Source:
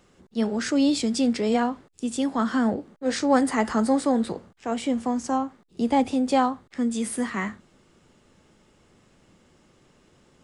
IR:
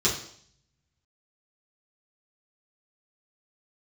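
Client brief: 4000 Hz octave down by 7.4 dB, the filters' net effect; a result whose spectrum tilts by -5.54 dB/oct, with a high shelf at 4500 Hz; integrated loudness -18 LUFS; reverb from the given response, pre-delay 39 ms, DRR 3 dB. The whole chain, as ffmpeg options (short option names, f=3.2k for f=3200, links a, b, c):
-filter_complex "[0:a]equalizer=f=4k:t=o:g=-5.5,highshelf=f=4.5k:g=-7.5,asplit=2[a][b];[1:a]atrim=start_sample=2205,adelay=39[c];[b][c]afir=irnorm=-1:irlink=0,volume=-15.5dB[d];[a][d]amix=inputs=2:normalize=0,volume=5.5dB"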